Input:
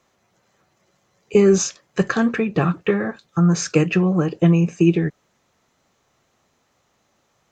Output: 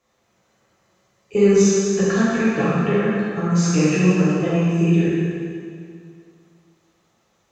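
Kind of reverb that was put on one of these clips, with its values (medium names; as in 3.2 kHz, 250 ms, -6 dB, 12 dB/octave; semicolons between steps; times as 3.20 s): plate-style reverb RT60 2.3 s, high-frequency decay 0.9×, DRR -9 dB; trim -8.5 dB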